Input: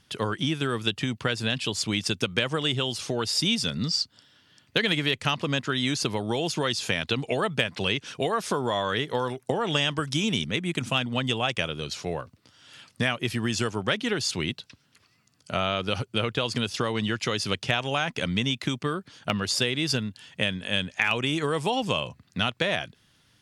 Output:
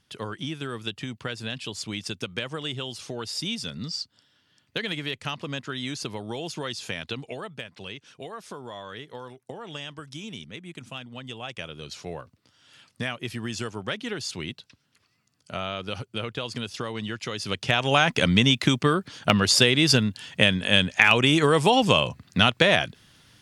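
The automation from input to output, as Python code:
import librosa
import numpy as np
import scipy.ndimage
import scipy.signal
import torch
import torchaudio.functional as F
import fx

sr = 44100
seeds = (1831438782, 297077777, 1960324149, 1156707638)

y = fx.gain(x, sr, db=fx.line((7.11, -6.0), (7.56, -12.5), (11.22, -12.5), (11.96, -5.0), (17.34, -5.0), (17.96, 7.0)))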